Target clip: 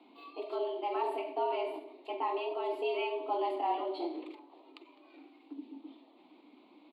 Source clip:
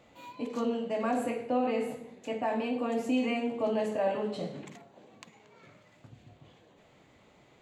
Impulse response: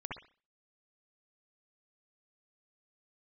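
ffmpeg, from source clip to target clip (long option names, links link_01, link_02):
-af "atempo=1.1,afreqshift=170,firequalizer=gain_entry='entry(140,0);entry(290,14);entry(440,-4);entry(990,3);entry(1600,-12);entry(2300,1);entry(4300,2);entry(6100,-27);entry(10000,-10)':delay=0.05:min_phase=1,volume=-3.5dB"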